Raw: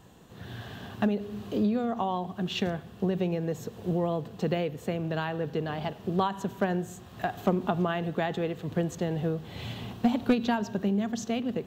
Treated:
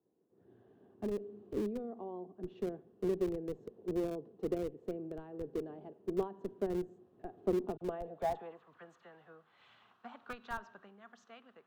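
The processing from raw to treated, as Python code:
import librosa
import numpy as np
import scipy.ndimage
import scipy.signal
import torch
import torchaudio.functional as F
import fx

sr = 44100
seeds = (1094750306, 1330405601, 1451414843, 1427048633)

p1 = fx.filter_sweep_bandpass(x, sr, from_hz=370.0, to_hz=1300.0, start_s=7.67, end_s=8.75, q=3.2)
p2 = fx.dispersion(p1, sr, late='lows', ms=41.0, hz=2100.0, at=(7.77, 9.83))
p3 = fx.schmitt(p2, sr, flips_db=-30.5)
p4 = p2 + F.gain(torch.from_numpy(p3), -5.5).numpy()
p5 = fx.band_widen(p4, sr, depth_pct=40)
y = F.gain(torch.from_numpy(p5), -3.0).numpy()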